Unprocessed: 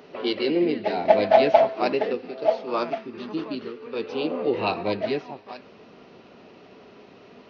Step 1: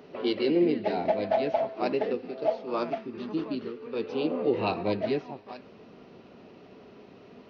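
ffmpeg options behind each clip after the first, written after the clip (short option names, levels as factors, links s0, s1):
-af "lowshelf=f=490:g=6.5,alimiter=limit=0.355:level=0:latency=1:release=445,volume=0.531"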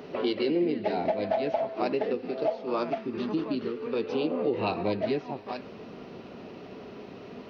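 -af "acompressor=threshold=0.0178:ratio=2.5,volume=2.24"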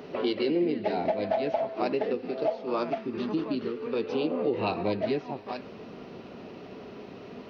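-af anull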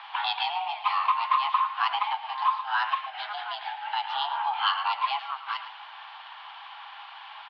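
-filter_complex "[0:a]highpass=f=470:t=q:w=0.5412,highpass=f=470:t=q:w=1.307,lowpass=f=3400:t=q:w=0.5176,lowpass=f=3400:t=q:w=0.7071,lowpass=f=3400:t=q:w=1.932,afreqshift=400,highshelf=f=2200:g=12,asplit=2[s0][s1];[s1]adelay=110.8,volume=0.251,highshelf=f=4000:g=-2.49[s2];[s0][s2]amix=inputs=2:normalize=0,volume=1.19"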